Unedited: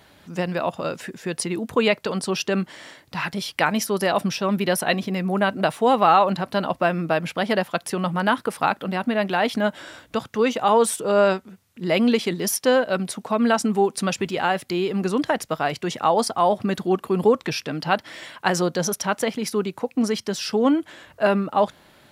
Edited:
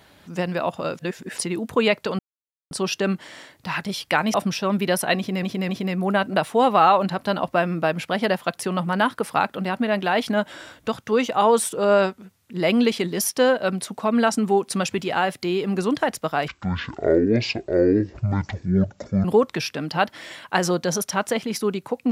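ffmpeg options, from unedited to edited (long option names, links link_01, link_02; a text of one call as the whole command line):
ffmpeg -i in.wav -filter_complex "[0:a]asplit=9[link_01][link_02][link_03][link_04][link_05][link_06][link_07][link_08][link_09];[link_01]atrim=end=0.992[link_10];[link_02]atrim=start=0.988:end=1.382,asetpts=PTS-STARTPTS,areverse[link_11];[link_03]atrim=start=1.378:end=2.19,asetpts=PTS-STARTPTS,afade=type=out:start_time=0.808:duration=0.004:curve=hsin,apad=pad_dur=0.52[link_12];[link_04]atrim=start=2.19:end=3.822,asetpts=PTS-STARTPTS,afade=type=in:duration=0.004:curve=hsin[link_13];[link_05]atrim=start=4.128:end=5.222[link_14];[link_06]atrim=start=4.958:end=5.222[link_15];[link_07]atrim=start=4.958:end=15.754[link_16];[link_08]atrim=start=15.75:end=17.16,asetpts=PTS-STARTPTS,asetrate=22491,aresample=44100[link_17];[link_09]atrim=start=17.156[link_18];[link_10][link_11]acrossfade=duration=0.004:curve1=hsin:curve2=hsin[link_19];[link_12][link_13]concat=n=2:v=0:a=1[link_20];[link_19][link_20]acrossfade=duration=0.004:curve1=hsin:curve2=hsin[link_21];[link_21][link_14]acrossfade=duration=0.004:curve1=hsin:curve2=hsin[link_22];[link_22][link_15]acrossfade=duration=0.004:curve1=hsin:curve2=hsin[link_23];[link_23][link_16]acrossfade=duration=0.004:curve1=hsin:curve2=hsin[link_24];[link_24][link_17]acrossfade=duration=0.004:curve1=hsin:curve2=hsin[link_25];[link_25][link_18]acrossfade=duration=0.004:curve1=hsin:curve2=hsin" out.wav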